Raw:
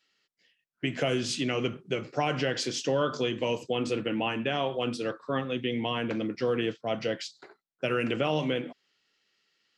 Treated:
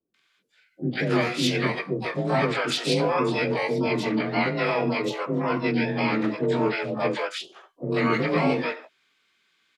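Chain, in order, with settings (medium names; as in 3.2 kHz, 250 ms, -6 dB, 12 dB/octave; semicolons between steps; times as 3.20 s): frequency axis rescaled in octaves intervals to 90%; harmony voices +5 st -11 dB, +12 st -12 dB; bands offset in time lows, highs 140 ms, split 510 Hz; trim +7.5 dB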